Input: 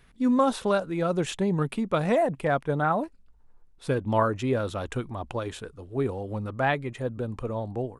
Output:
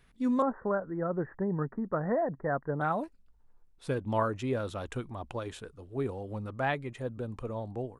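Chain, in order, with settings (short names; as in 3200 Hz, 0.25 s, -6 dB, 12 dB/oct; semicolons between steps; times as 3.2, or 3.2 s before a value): 0.42–2.81 Chebyshev low-pass 1900 Hz, order 8; gain -5.5 dB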